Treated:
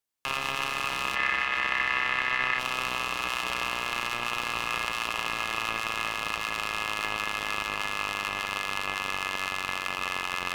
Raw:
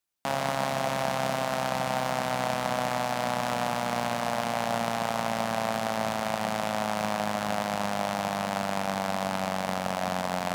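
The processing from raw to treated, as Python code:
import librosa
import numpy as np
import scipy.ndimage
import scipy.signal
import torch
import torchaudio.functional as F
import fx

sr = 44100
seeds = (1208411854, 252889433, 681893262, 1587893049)

y = fx.riaa(x, sr, side='playback', at=(1.15, 2.59))
y = y * np.sin(2.0 * np.pi * 1900.0 * np.arange(len(y)) / sr)
y = y * 10.0 ** (1.0 / 20.0)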